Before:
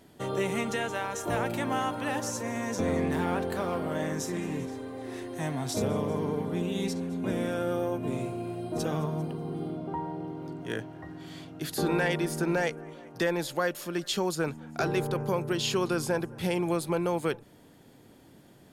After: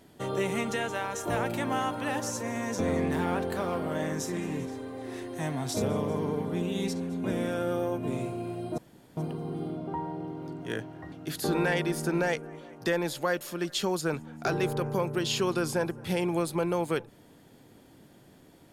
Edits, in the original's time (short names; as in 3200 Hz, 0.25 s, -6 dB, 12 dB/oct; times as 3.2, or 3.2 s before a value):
8.78–9.17 room tone
11.12–11.46 cut